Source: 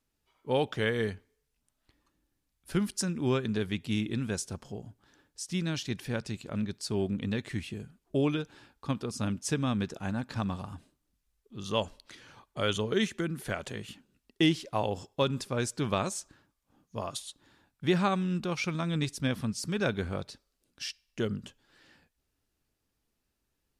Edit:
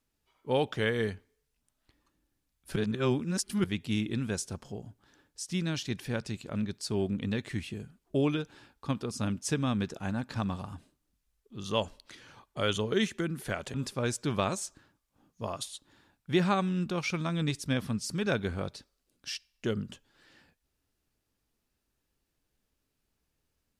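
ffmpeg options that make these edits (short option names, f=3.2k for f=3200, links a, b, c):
-filter_complex "[0:a]asplit=4[a][b][c][d];[a]atrim=end=2.762[e];[b]atrim=start=2.758:end=3.642,asetpts=PTS-STARTPTS,areverse[f];[c]atrim=start=3.638:end=13.742[g];[d]atrim=start=15.278[h];[e][f]acrossfade=d=0.004:c1=hsin:c2=hsin[i];[i][g]acrossfade=d=0.004:c1=hsin:c2=hsin[j];[j][h]acrossfade=d=0.004:c1=hsin:c2=hsin"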